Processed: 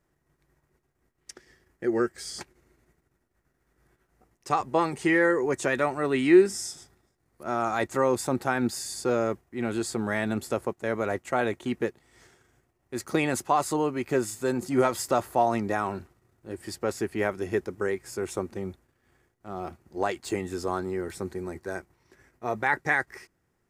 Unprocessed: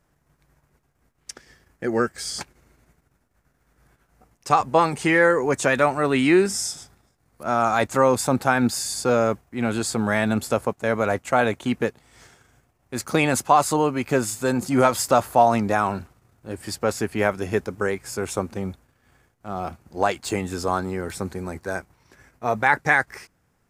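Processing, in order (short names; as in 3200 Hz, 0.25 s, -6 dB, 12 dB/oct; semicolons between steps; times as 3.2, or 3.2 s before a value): small resonant body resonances 360/1900 Hz, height 9 dB, ringing for 40 ms; gain -7.5 dB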